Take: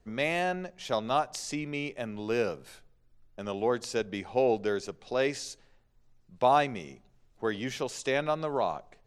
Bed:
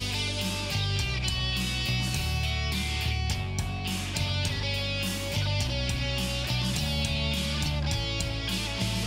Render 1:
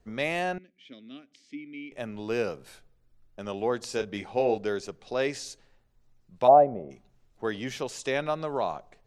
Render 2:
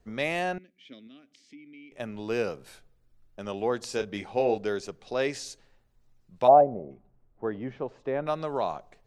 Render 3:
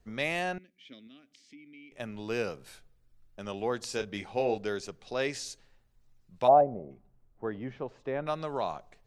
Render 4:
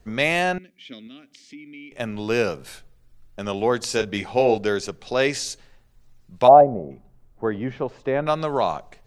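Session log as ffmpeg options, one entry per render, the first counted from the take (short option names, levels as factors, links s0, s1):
-filter_complex "[0:a]asettb=1/sr,asplit=3[s0][s1][s2];[s0]atrim=end=0.584[s3];[s1]atrim=start=0.58:end=1.92,asetpts=PTS-STARTPTS,afade=t=in:d=0.004:c=qsin,afade=t=out:st=1.336:d=0.004:c=qsin,asplit=3[s4][s5][s6];[s4]bandpass=f=270:t=q:w=8,volume=1[s7];[s5]bandpass=f=2290:t=q:w=8,volume=0.501[s8];[s6]bandpass=f=3010:t=q:w=8,volume=0.355[s9];[s7][s8][s9]amix=inputs=3:normalize=0[s10];[s2]atrim=start=1.916[s11];[s3][s10]acrossfade=d=0.004:c1=hsin:c2=qsin[s12];[s12][s11]acrossfade=d=0.004:c1=qsin:c2=hsin,asettb=1/sr,asplit=3[s13][s14][s15];[s13]atrim=end=3.864[s16];[s14]atrim=start=3.86:end=4.58,asetpts=PTS-STARTPTS,afade=t=in:d=0.004:c=qsin,afade=t=out:st=0.716:d=0.004:c=qsin,asplit=2[s17][s18];[s18]adelay=29,volume=0.355[s19];[s17][s19]amix=inputs=2:normalize=0,atrim=end_sample=31752[s20];[s15]atrim=start=4.576[s21];[s16][s20]acrossfade=d=0.004:c1=hsin:c2=qsin[s22];[s22][s21]acrossfade=d=0.004:c1=qsin:c2=hsin,asplit=3[s23][s24][s25];[s23]afade=t=out:st=6.47:d=0.02[s26];[s24]lowpass=f=630:t=q:w=4.3,afade=t=in:st=6.47:d=0.02,afade=t=out:st=6.9:d=0.02[s27];[s25]afade=t=in:st=6.9:d=0.02[s28];[s26][s27][s28]amix=inputs=3:normalize=0"
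-filter_complex "[0:a]asettb=1/sr,asplit=3[s0][s1][s2];[s0]atrim=end=1.074[s3];[s1]atrim=start=1.07:end=2,asetpts=PTS-STARTPTS,afade=t=in:d=0.004:c=qsin,afade=t=out:st=0.926:d=0.004:c=qsin,acompressor=threshold=0.00251:ratio=2:attack=3.2:release=140:knee=1:detection=peak[s4];[s2]atrim=start=1.996[s5];[s3][s4]acrossfade=d=0.004:c1=hsin:c2=qsin[s6];[s6][s5]acrossfade=d=0.004:c1=qsin:c2=hsin,asettb=1/sr,asplit=3[s7][s8][s9];[s7]atrim=end=6.614[s10];[s8]atrim=start=6.61:end=8.27,asetpts=PTS-STARTPTS,afade=t=in:d=0.004:c=qsin,afade=t=out:st=1.656:d=0.004:c=qsin,lowpass=1100[s11];[s9]atrim=start=8.266[s12];[s10][s11]acrossfade=d=0.004:c1=hsin:c2=qsin[s13];[s13][s12]acrossfade=d=0.004:c1=qsin:c2=hsin"
-af "equalizer=f=460:w=0.42:g=-4"
-af "volume=3.35,alimiter=limit=0.794:level=0:latency=1"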